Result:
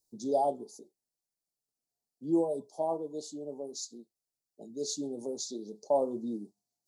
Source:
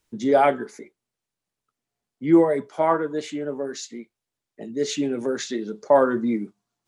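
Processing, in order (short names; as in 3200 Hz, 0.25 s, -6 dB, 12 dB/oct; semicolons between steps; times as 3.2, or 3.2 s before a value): elliptic band-stop 800–4400 Hz, stop band 50 dB; tilt +2 dB/oct; gain -8 dB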